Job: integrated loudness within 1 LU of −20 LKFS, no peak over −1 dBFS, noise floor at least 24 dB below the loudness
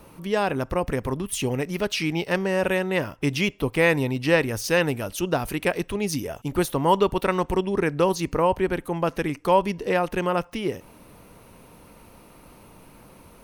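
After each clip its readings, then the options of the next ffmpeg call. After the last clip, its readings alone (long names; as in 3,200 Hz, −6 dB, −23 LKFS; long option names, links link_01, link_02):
integrated loudness −24.5 LKFS; sample peak −6.0 dBFS; target loudness −20.0 LKFS
→ -af "volume=4.5dB"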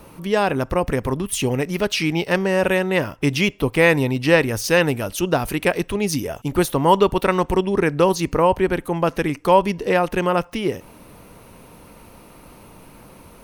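integrated loudness −20.0 LKFS; sample peak −1.5 dBFS; background noise floor −46 dBFS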